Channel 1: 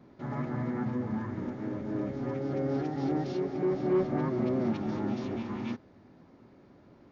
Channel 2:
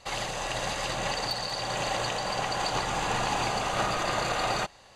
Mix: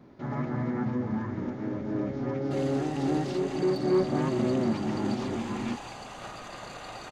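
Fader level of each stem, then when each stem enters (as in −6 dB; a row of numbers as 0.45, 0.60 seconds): +2.5, −13.5 decibels; 0.00, 2.45 seconds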